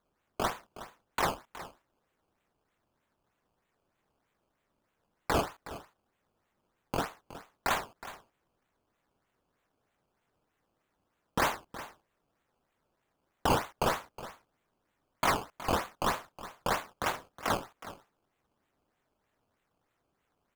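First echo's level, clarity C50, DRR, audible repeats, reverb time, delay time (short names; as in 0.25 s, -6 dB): -15.0 dB, none, none, 1, none, 0.367 s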